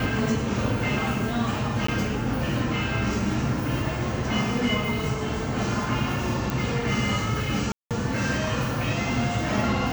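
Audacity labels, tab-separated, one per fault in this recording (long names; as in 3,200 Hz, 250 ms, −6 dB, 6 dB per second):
1.870000	1.880000	drop-out 14 ms
6.500000	6.500000	click
7.720000	7.910000	drop-out 187 ms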